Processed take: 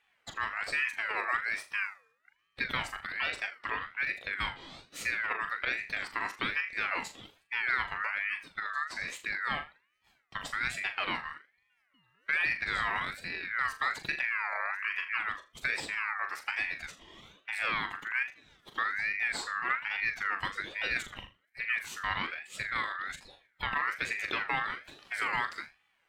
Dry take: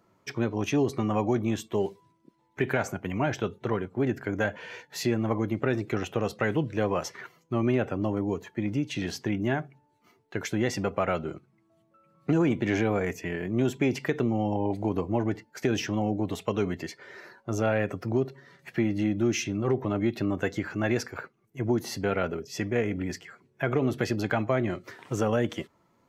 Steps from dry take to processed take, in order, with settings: flutter echo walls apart 6.9 m, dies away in 0.28 s; ring modulator with a swept carrier 1800 Hz, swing 20%, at 1.2 Hz; gain -4 dB

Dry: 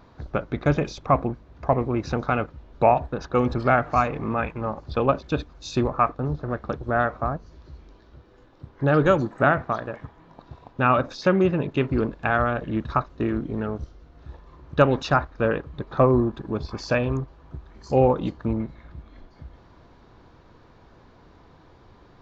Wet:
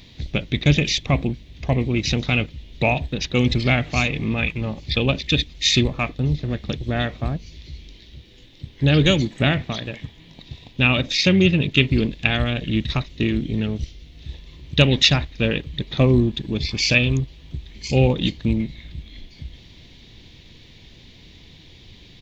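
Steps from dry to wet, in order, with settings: EQ curve 190 Hz 0 dB, 1300 Hz -18 dB, 4400 Hz +9 dB; harmoniser -12 st -16 dB; band shelf 2600 Hz +12 dB 1.2 oct; gain +6.5 dB

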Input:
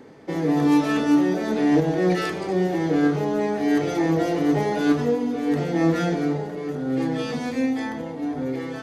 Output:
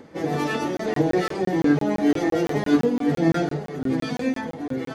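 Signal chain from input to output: plain phase-vocoder stretch 0.56×; crackling interface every 0.17 s, samples 1024, zero, from 0.77; gain +3.5 dB

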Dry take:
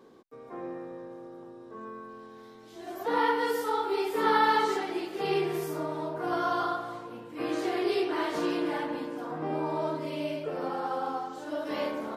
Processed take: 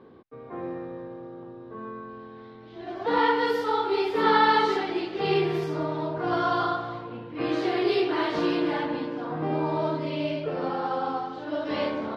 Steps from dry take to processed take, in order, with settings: bell 89 Hz +10.5 dB 1.6 oct; low-pass opened by the level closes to 2400 Hz, open at -24 dBFS; resonant high shelf 5900 Hz -11.5 dB, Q 1.5; gain +3 dB

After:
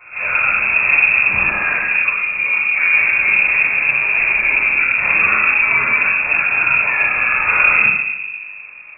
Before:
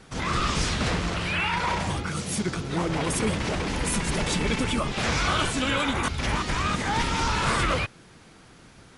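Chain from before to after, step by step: pre-echo 0.288 s -22 dB; reverb RT60 1.1 s, pre-delay 3 ms, DRR -8 dB; inverted band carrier 2600 Hz; gain -13.5 dB

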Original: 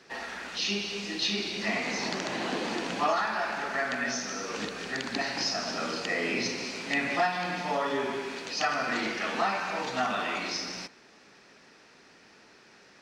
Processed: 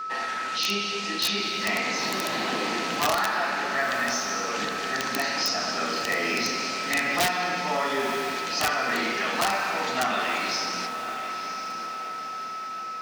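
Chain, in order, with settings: whine 1300 Hz -36 dBFS; low shelf 480 Hz -5 dB; on a send at -12 dB: reverb RT60 0.95 s, pre-delay 4 ms; on the sum: wrapped overs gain 19 dB; in parallel at -2 dB: limiter -27.5 dBFS, peak gain reduction 8.5 dB; on the sum: HPF 43 Hz; bell 75 Hz -4.5 dB 0.57 oct; diffused feedback echo 0.971 s, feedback 52%, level -10 dB; gain +1 dB

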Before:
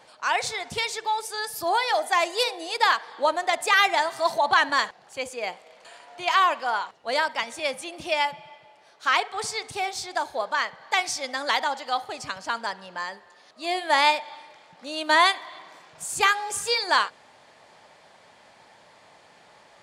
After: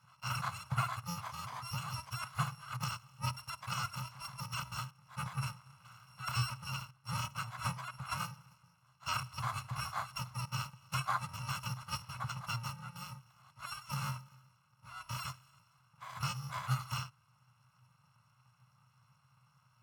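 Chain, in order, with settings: FFT order left unsorted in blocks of 128 samples; vocal rider within 5 dB 0.5 s; double band-pass 360 Hz, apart 3 oct; gain +12 dB

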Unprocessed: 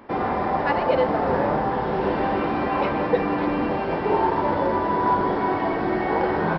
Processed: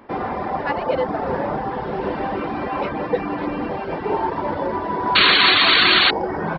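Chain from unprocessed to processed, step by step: painted sound noise, 5.15–6.11, 960–4500 Hz -13 dBFS; reverb removal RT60 0.59 s

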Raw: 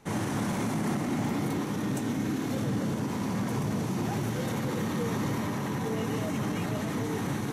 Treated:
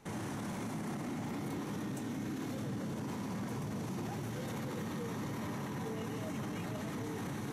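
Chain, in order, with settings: limiter -29 dBFS, peak gain reduction 9 dB; gain -3 dB

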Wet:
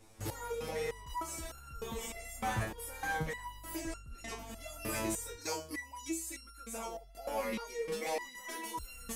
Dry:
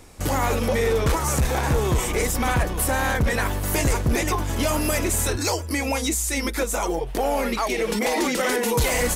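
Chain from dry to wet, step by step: 3.75–4.38 LPF 9000 Hz 12 dB/oct; stepped resonator 3.3 Hz 110–1400 Hz; gain -2 dB

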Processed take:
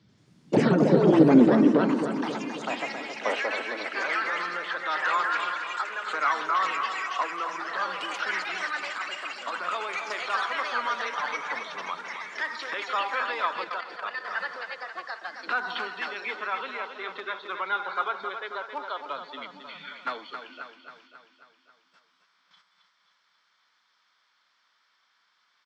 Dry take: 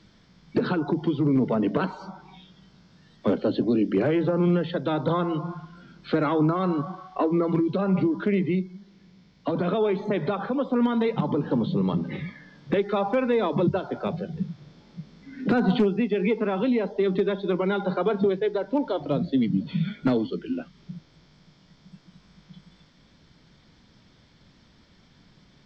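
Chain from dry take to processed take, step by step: gate -47 dBFS, range -8 dB; high-pass sweep 110 Hz -> 1200 Hz, 0.35–3.96; echoes that change speed 88 ms, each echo +4 st, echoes 3; feedback echo 0.27 s, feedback 57%, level -8 dB; 13.64–14.25 level quantiser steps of 10 dB; gain -1.5 dB

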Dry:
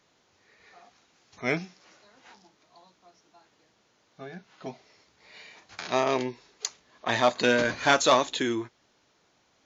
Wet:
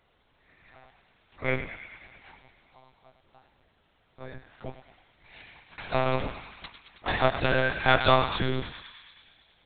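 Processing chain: 5.43–7.57 cycle switcher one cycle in 3, muted; thinning echo 0.107 s, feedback 76%, high-pass 850 Hz, level -8.5 dB; monotone LPC vocoder at 8 kHz 130 Hz

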